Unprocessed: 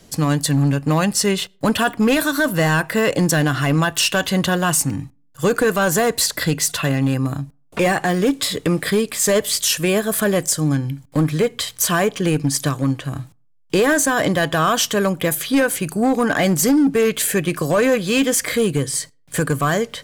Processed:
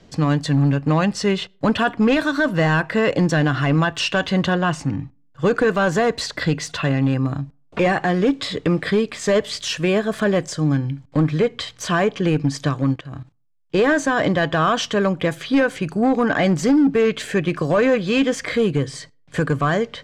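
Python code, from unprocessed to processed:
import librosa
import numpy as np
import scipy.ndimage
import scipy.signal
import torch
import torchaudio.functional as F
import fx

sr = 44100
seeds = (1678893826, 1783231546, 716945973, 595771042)

y = fx.high_shelf(x, sr, hz=fx.line((4.52, 8700.0), (5.45, 5400.0)), db=-12.0, at=(4.52, 5.45), fade=0.02)
y = fx.level_steps(y, sr, step_db=16, at=(12.94, 13.79))
y = fx.air_absorb(y, sr, metres=150.0)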